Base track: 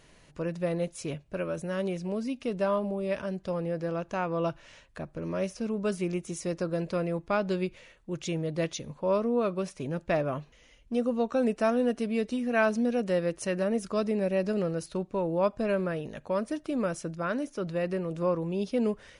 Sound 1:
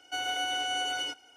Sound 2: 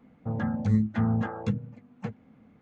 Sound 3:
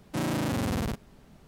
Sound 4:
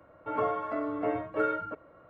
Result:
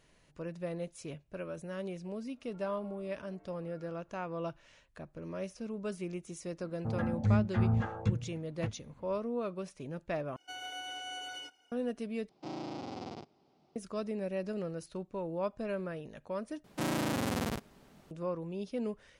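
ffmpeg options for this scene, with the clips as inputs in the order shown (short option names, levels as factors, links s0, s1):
-filter_complex "[3:a]asplit=2[s0][s1];[0:a]volume=0.376[s2];[4:a]acompressor=threshold=0.00708:ratio=6:attack=3.2:release=140:knee=1:detection=peak[s3];[2:a]asubboost=boost=10:cutoff=86[s4];[s0]highpass=f=110:w=0.5412,highpass=f=110:w=1.3066,equalizer=f=120:t=q:w=4:g=-7,equalizer=f=200:t=q:w=4:g=-6,equalizer=f=350:t=q:w=4:g=8,equalizer=f=770:t=q:w=4:g=10,equalizer=f=1700:t=q:w=4:g=-10,equalizer=f=5000:t=q:w=4:g=7,lowpass=f=5600:w=0.5412,lowpass=f=5600:w=1.3066[s5];[s1]lowshelf=f=130:g=-11[s6];[s2]asplit=4[s7][s8][s9][s10];[s7]atrim=end=10.364[s11];[1:a]atrim=end=1.36,asetpts=PTS-STARTPTS,volume=0.282[s12];[s8]atrim=start=11.716:end=12.294[s13];[s5]atrim=end=1.47,asetpts=PTS-STARTPTS,volume=0.211[s14];[s9]atrim=start=13.756:end=16.644[s15];[s6]atrim=end=1.47,asetpts=PTS-STARTPTS,volume=0.841[s16];[s10]atrim=start=18.106[s17];[s3]atrim=end=2.09,asetpts=PTS-STARTPTS,volume=0.15,afade=t=in:d=0.004:c=hsin,afade=t=out:st=2.086:d=0.004:c=hsin,adelay=2280[s18];[s4]atrim=end=2.61,asetpts=PTS-STARTPTS,volume=0.631,afade=t=in:d=0.004:c=hsin,afade=t=out:st=2.606:d=0.004:c=hsin,adelay=6590[s19];[s11][s12]acrossfade=d=0.004:c1=hsin:c2=hsin[s20];[s20][s13]acrossfade=d=0.004:c1=hsin:c2=hsin[s21];[s21][s14]acrossfade=d=0.004:c1=hsin:c2=hsin[s22];[s22][s15]acrossfade=d=0.004:c1=hsin:c2=hsin[s23];[s23][s16]acrossfade=d=0.004:c1=hsin:c2=hsin[s24];[s24][s17]acrossfade=d=0.004:c1=hsin:c2=hsin[s25];[s25][s18][s19]amix=inputs=3:normalize=0"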